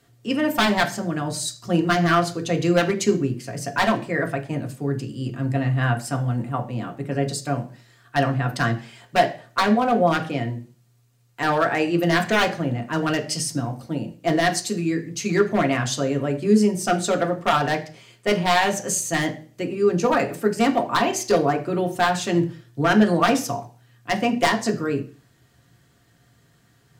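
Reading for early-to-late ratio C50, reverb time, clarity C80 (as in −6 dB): 13.5 dB, 0.40 s, 18.5 dB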